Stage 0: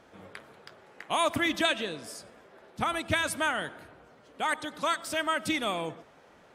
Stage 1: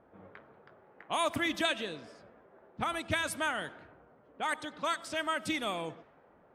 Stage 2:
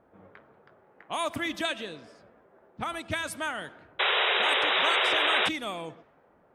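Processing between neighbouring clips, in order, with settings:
level-controlled noise filter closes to 1.1 kHz, open at -27 dBFS; trim -4 dB
painted sound noise, 3.99–5.49 s, 360–3900 Hz -25 dBFS

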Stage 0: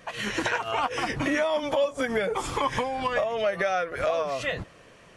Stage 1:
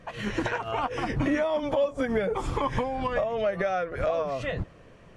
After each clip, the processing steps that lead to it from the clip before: tilt EQ -2.5 dB/octave; trim -2.5 dB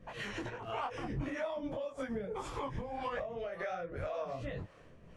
compression, threshold -30 dBFS, peak gain reduction 9.5 dB; harmonic tremolo 1.8 Hz, depth 70%, crossover 430 Hz; detune thickener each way 54 cents; trim +1.5 dB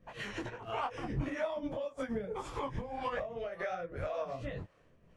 upward expansion 1.5:1, over -56 dBFS; trim +3.5 dB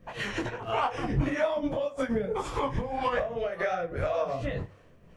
reverberation RT60 0.45 s, pre-delay 29 ms, DRR 14.5 dB; trim +8 dB

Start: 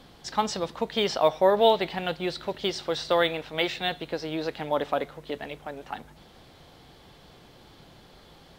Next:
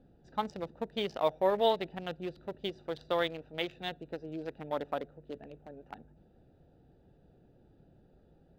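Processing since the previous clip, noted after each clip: local Wiener filter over 41 samples; trim -7 dB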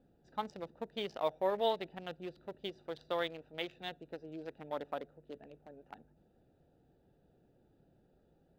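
bass shelf 150 Hz -6 dB; trim -4.5 dB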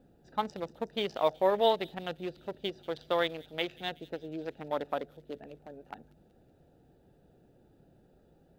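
feedback echo behind a high-pass 186 ms, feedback 55%, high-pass 5.6 kHz, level -10.5 dB; trim +6.5 dB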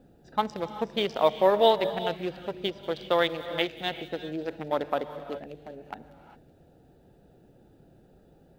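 gated-style reverb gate 430 ms rising, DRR 11 dB; trim +5 dB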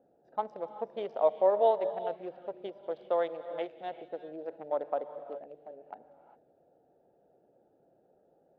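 band-pass filter 620 Hz, Q 1.9; trim -2 dB

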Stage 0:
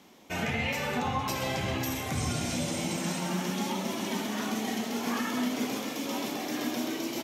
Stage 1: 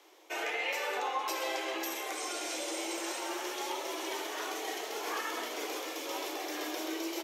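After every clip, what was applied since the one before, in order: Chebyshev high-pass 320 Hz, order 6; trim -1.5 dB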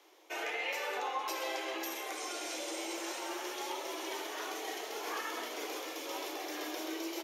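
band-stop 7.9 kHz, Q 12; trim -2.5 dB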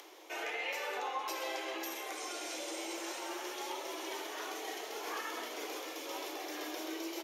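upward compressor, threshold -44 dBFS; trim -1.5 dB

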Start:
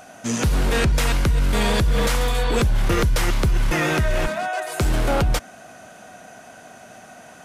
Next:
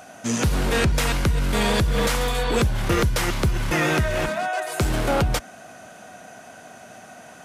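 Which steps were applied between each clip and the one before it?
high-pass 53 Hz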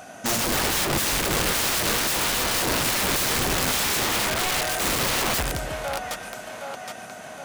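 two-band feedback delay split 520 Hz, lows 165 ms, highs 767 ms, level -7.5 dB; integer overflow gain 20.5 dB; trim +1.5 dB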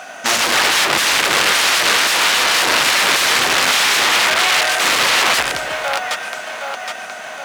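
band-pass filter 2.2 kHz, Q 0.56; in parallel at -2 dB: short-mantissa float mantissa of 2-bit; on the sum: trim +8 dB

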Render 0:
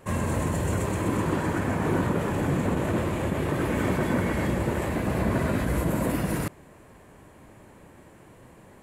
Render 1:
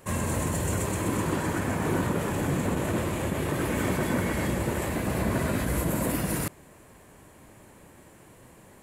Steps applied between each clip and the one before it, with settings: treble shelf 4 kHz +9 dB; trim -2 dB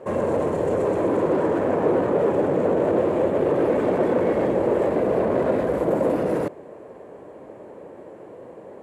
in parallel at -7 dB: sine folder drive 11 dB, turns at -14.5 dBFS; on the sum: band-pass filter 490 Hz, Q 2.3; trim +7.5 dB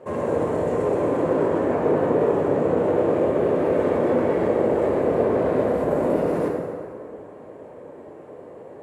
plate-style reverb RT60 2.2 s, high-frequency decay 0.6×, DRR -1.5 dB; trim -4 dB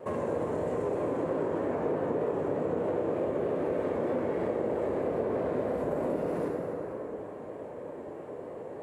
compression 2.5:1, threshold -32 dBFS, peak gain reduction 11.5 dB; vibrato 3.2 Hz 39 cents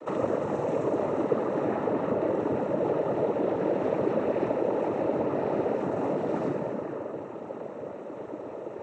noise-vocoded speech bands 12; trim +3.5 dB

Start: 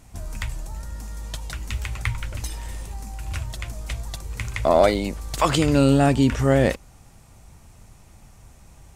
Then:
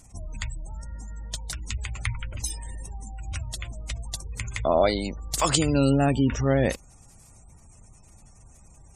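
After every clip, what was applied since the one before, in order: spectral gate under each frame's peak -30 dB strong; tone controls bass +1 dB, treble +13 dB; trim -4.5 dB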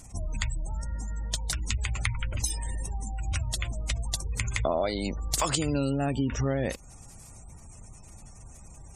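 compression 6:1, threshold -28 dBFS, peak gain reduction 12 dB; trim +4 dB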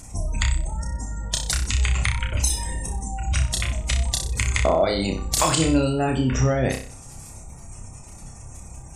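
flutter echo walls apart 5.3 m, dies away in 0.42 s; loudness maximiser +10.5 dB; trim -4.5 dB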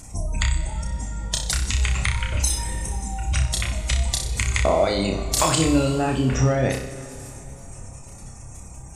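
plate-style reverb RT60 3.3 s, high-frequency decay 0.85×, DRR 10 dB

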